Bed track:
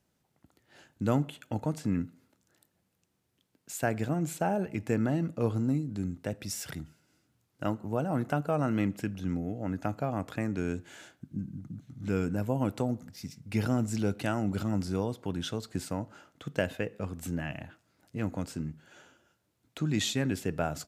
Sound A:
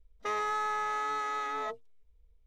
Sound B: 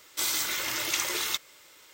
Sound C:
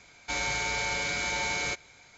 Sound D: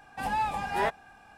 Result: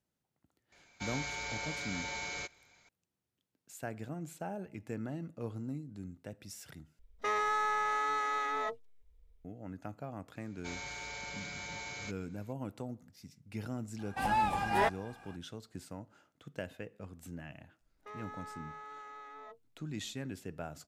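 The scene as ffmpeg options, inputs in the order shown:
-filter_complex "[3:a]asplit=2[s0][s1];[1:a]asplit=2[s2][s3];[0:a]volume=0.266[s4];[s2]equalizer=f=1900:t=o:w=0.33:g=2.5[s5];[s3]highshelf=f=3700:g=-9[s6];[s4]asplit=2[s7][s8];[s7]atrim=end=6.994[s9];[s5]atrim=end=2.46[s10];[s8]atrim=start=9.446[s11];[s0]atrim=end=2.17,asetpts=PTS-STARTPTS,volume=0.335,afade=t=in:d=0.004:c=hsin,afade=t=out:st=2.166:d=0.004:c=hsin,adelay=720[s12];[s1]atrim=end=2.17,asetpts=PTS-STARTPTS,volume=0.224,afade=t=in:d=0.004:c=hsin,afade=t=out:st=2.166:d=0.004:c=hsin,adelay=10360[s13];[4:a]atrim=end=1.37,asetpts=PTS-STARTPTS,volume=0.891,afade=t=in:d=0.004:c=hsin,afade=t=out:st=1.366:d=0.004:c=hsin,adelay=13990[s14];[s6]atrim=end=2.46,asetpts=PTS-STARTPTS,volume=0.188,afade=t=in:d=0.004:c=hsin,afade=t=out:st=2.456:d=0.004:c=hsin,adelay=17810[s15];[s9][s10]acrossfade=d=0.004:c1=hsin:c2=hsin[s16];[s16][s11]acrossfade=d=0.004:c1=hsin:c2=hsin[s17];[s17][s12][s13][s14][s15]amix=inputs=5:normalize=0"

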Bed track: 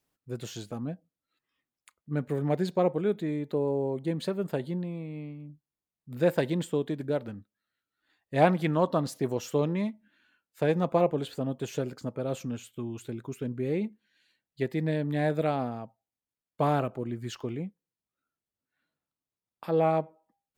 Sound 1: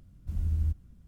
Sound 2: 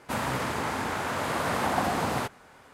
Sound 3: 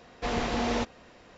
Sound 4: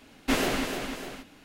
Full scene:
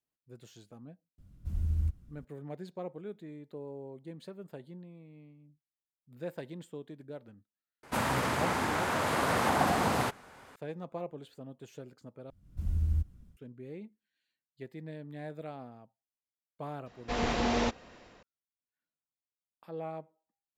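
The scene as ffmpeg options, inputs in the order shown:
-filter_complex "[1:a]asplit=2[s0][s1];[0:a]volume=0.178[s2];[2:a]acontrast=81[s3];[s1]dynaudnorm=f=110:g=3:m=2.66[s4];[3:a]dynaudnorm=f=110:g=5:m=1.88[s5];[s2]asplit=2[s6][s7];[s6]atrim=end=12.304[s8];[s4]atrim=end=1.07,asetpts=PTS-STARTPTS,volume=0.335[s9];[s7]atrim=start=13.366[s10];[s0]atrim=end=1.07,asetpts=PTS-STARTPTS,volume=0.794,afade=t=in:d=0.004:c=hsin,afade=t=out:st=1.066:d=0.004:c=hsin,adelay=1180[s11];[s3]atrim=end=2.73,asetpts=PTS-STARTPTS,volume=0.422,afade=t=in:d=0.004:c=hsin,afade=t=out:st=2.726:d=0.004:c=hsin,adelay=7830[s12];[s5]atrim=end=1.37,asetpts=PTS-STARTPTS,volume=0.501,afade=t=in:d=0.004:c=hsin,afade=t=out:st=1.366:d=0.004:c=hsin,adelay=16860[s13];[s8][s9]acrossfade=d=0.004:c1=hsin:c2=hsin[s14];[s14][s10]acrossfade=d=0.004:c1=hsin:c2=hsin[s15];[s15][s11][s12][s13]amix=inputs=4:normalize=0"

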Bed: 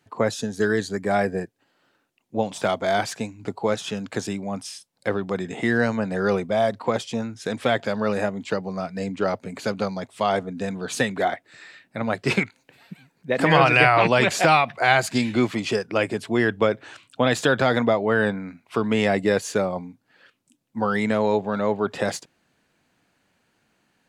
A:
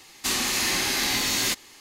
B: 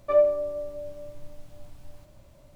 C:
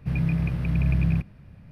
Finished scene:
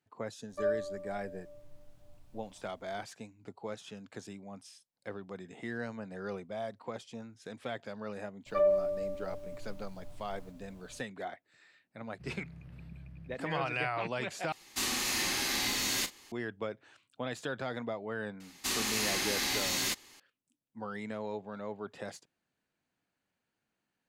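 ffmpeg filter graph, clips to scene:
-filter_complex "[2:a]asplit=2[s0][s1];[1:a]asplit=2[s2][s3];[0:a]volume=0.133[s4];[s1]alimiter=limit=0.158:level=0:latency=1:release=71[s5];[3:a]acompressor=threshold=0.0398:ratio=6:attack=3.2:release=140:knee=1:detection=peak[s6];[s2]asplit=2[s7][s8];[s8]adelay=38,volume=0.237[s9];[s7][s9]amix=inputs=2:normalize=0[s10];[s4]asplit=2[s11][s12];[s11]atrim=end=14.524[s13];[s10]atrim=end=1.8,asetpts=PTS-STARTPTS,volume=0.422[s14];[s12]atrim=start=16.316[s15];[s0]atrim=end=2.55,asetpts=PTS-STARTPTS,volume=0.251,afade=t=in:d=0.004:c=hsin,afade=t=out:st=2.546:d=0.004:c=hsin,adelay=490[s16];[s5]atrim=end=2.55,asetpts=PTS-STARTPTS,volume=0.668,afade=t=in:d=0.004:c=hsin,afade=t=out:st=2.546:d=0.004:c=hsin,adelay=8460[s17];[s6]atrim=end=1.71,asetpts=PTS-STARTPTS,volume=0.133,afade=t=in:d=0.1,afade=t=out:st=1.61:d=0.1,adelay=12140[s18];[s3]atrim=end=1.8,asetpts=PTS-STARTPTS,volume=0.422,afade=t=in:d=0.004:c=hsin,afade=t=out:st=1.796:d=0.004:c=hsin,adelay=18400[s19];[s13][s14]acrossfade=d=0.004:c1=hsin:c2=hsin[s20];[s20][s15]acrossfade=d=0.004:c1=hsin:c2=hsin[s21];[s21][s16][s17][s18][s19]amix=inputs=5:normalize=0"

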